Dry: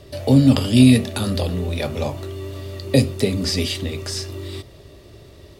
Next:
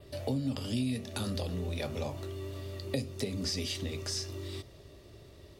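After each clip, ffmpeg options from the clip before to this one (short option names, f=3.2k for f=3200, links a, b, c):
-af "adynamicequalizer=threshold=0.00708:dfrequency=5900:dqfactor=2.7:tfrequency=5900:tqfactor=2.7:attack=5:release=100:ratio=0.375:range=3:mode=boostabove:tftype=bell,acompressor=threshold=-22dB:ratio=4,volume=-9dB"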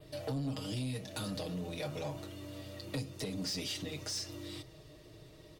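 -af "aecho=1:1:6.4:0.92,asoftclip=type=tanh:threshold=-28dB,volume=-3dB"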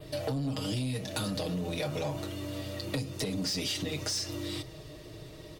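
-af "acompressor=threshold=-38dB:ratio=6,volume=8.5dB"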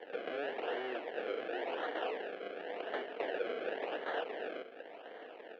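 -af "acrusher=samples=33:mix=1:aa=0.000001:lfo=1:lforange=33:lforate=0.92,aeval=exprs='abs(val(0))':c=same,highpass=f=330:w=0.5412,highpass=f=330:w=1.3066,equalizer=f=480:t=q:w=4:g=8,equalizer=f=690:t=q:w=4:g=6,equalizer=f=1.1k:t=q:w=4:g=-5,equalizer=f=1.7k:t=q:w=4:g=8,equalizer=f=2.9k:t=q:w=4:g=7,lowpass=f=3.1k:w=0.5412,lowpass=f=3.1k:w=1.3066,volume=-1dB"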